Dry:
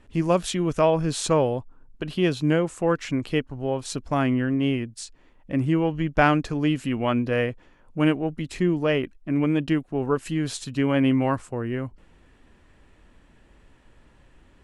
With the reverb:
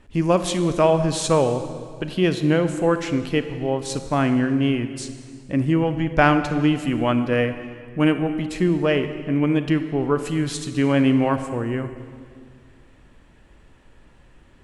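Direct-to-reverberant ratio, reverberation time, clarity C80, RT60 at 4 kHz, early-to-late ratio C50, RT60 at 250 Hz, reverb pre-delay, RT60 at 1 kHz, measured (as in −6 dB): 9.0 dB, 2.1 s, 11.0 dB, 1.7 s, 10.0 dB, 2.3 s, 30 ms, 1.9 s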